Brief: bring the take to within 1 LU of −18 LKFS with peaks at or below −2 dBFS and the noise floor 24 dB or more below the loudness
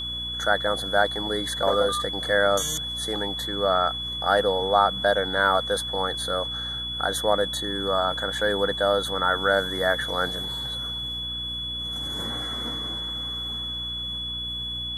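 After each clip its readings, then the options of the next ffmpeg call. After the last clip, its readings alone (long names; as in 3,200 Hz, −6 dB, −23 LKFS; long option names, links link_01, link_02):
mains hum 60 Hz; hum harmonics up to 300 Hz; level of the hum −37 dBFS; interfering tone 3,400 Hz; level of the tone −29 dBFS; integrated loudness −24.5 LKFS; sample peak −6.0 dBFS; target loudness −18.0 LKFS
→ -af "bandreject=frequency=60:width_type=h:width=6,bandreject=frequency=120:width_type=h:width=6,bandreject=frequency=180:width_type=h:width=6,bandreject=frequency=240:width_type=h:width=6,bandreject=frequency=300:width_type=h:width=6"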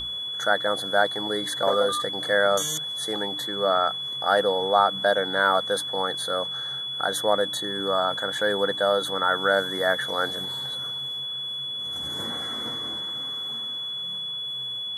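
mains hum none found; interfering tone 3,400 Hz; level of the tone −29 dBFS
→ -af "bandreject=frequency=3400:width=30"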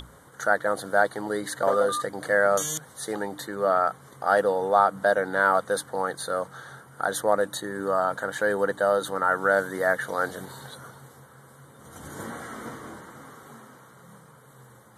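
interfering tone none found; integrated loudness −25.0 LKFS; sample peak −6.5 dBFS; target loudness −18.0 LKFS
→ -af "volume=7dB,alimiter=limit=-2dB:level=0:latency=1"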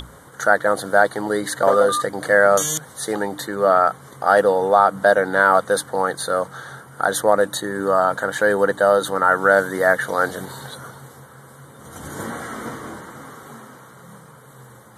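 integrated loudness −18.5 LKFS; sample peak −2.0 dBFS; background noise floor −45 dBFS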